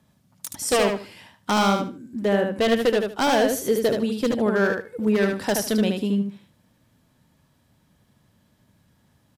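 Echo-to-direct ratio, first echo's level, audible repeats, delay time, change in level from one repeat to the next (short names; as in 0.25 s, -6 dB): -4.5 dB, -4.5 dB, 3, 75 ms, -14.0 dB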